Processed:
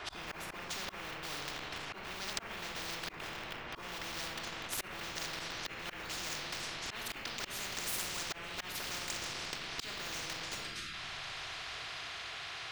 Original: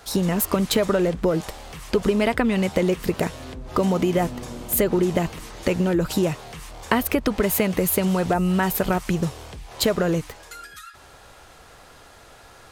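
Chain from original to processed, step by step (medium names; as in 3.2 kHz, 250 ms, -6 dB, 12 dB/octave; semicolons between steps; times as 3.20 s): pitch bend over the whole clip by -2 st ending unshifted; band-pass sweep 1 kHz -> 2.4 kHz, 3.71–7.16 s; in parallel at -10.5 dB: Schmitt trigger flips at -40.5 dBFS; on the sum: simulated room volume 2200 m³, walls furnished, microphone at 3.2 m; slow attack 558 ms; ten-band graphic EQ 250 Hz -8 dB, 500 Hz -11 dB, 1 kHz -9 dB, 4 kHz -4 dB, 8 kHz -6 dB; sine folder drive 10 dB, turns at -25 dBFS; peaking EQ 13 kHz -12 dB 1 oct; spectrum-flattening compressor 10:1; trim +5.5 dB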